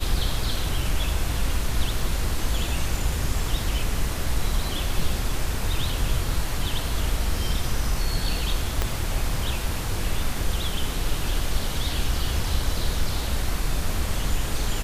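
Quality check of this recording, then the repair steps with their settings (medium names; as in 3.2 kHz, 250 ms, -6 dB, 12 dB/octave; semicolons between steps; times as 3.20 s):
8.82 s: pop -9 dBFS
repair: de-click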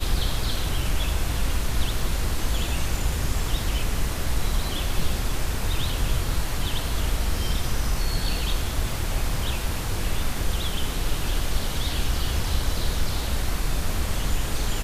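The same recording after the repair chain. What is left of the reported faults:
8.82 s: pop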